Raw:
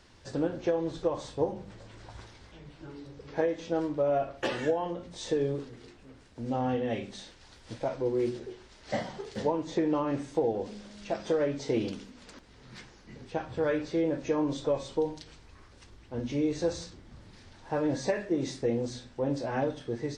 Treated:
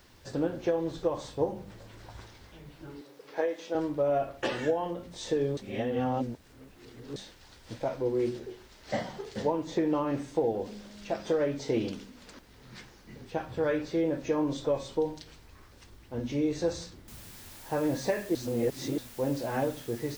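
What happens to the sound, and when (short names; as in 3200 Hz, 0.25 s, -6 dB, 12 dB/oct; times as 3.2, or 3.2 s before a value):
3.01–3.75 HPF 390 Hz
5.57–7.16 reverse
17.08 noise floor step -70 dB -50 dB
18.35–18.98 reverse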